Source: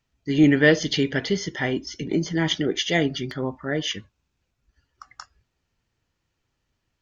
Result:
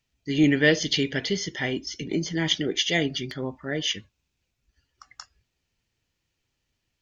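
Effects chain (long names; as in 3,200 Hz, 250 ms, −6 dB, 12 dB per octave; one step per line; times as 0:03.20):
drawn EQ curve 500 Hz 0 dB, 1,300 Hz −3 dB, 2,400 Hz +5 dB
level −3.5 dB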